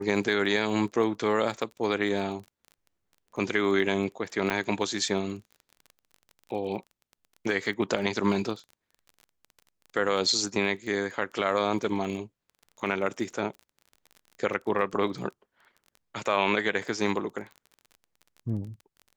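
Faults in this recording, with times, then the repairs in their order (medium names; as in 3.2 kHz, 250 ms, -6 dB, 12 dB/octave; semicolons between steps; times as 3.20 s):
crackle 23 per s -38 dBFS
4.50 s: dropout 3.1 ms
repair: de-click; interpolate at 4.50 s, 3.1 ms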